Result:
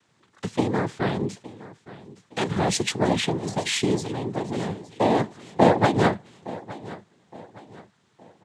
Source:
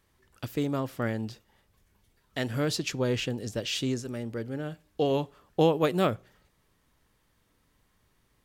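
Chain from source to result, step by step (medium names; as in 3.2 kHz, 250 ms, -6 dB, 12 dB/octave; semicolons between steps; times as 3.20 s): noise-vocoded speech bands 6; feedback delay 865 ms, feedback 39%, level -18 dB; trim +6 dB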